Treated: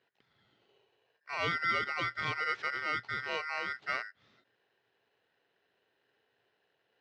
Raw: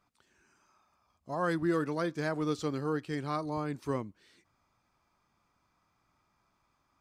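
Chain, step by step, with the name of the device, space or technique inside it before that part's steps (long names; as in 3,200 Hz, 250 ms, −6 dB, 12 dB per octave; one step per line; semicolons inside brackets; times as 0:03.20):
ring modulator pedal into a guitar cabinet (ring modulator with a square carrier 1,700 Hz; loudspeaker in its box 98–4,000 Hz, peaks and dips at 120 Hz +9 dB, 400 Hz +6 dB, 2,700 Hz −4 dB)
level −1 dB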